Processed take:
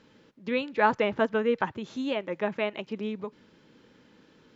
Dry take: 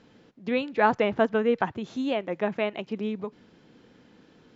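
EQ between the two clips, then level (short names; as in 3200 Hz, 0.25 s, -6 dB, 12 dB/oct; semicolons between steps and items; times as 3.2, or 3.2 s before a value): Butterworth band-stop 720 Hz, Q 6.9; low shelf 490 Hz -3.5 dB; 0.0 dB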